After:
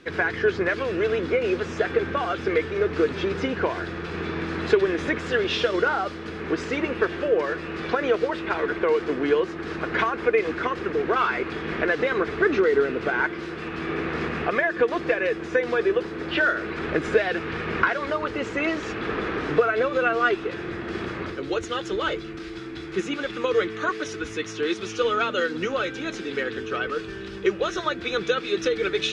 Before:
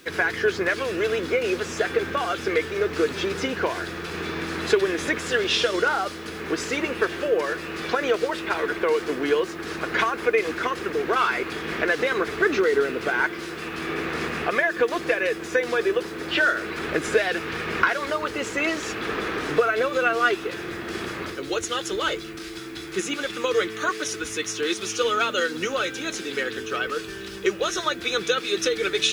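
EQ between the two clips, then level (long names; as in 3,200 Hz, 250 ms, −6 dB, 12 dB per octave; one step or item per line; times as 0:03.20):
low-pass filter 3,200 Hz 6 dB per octave
high-frequency loss of the air 61 metres
low-shelf EQ 240 Hz +4.5 dB
0.0 dB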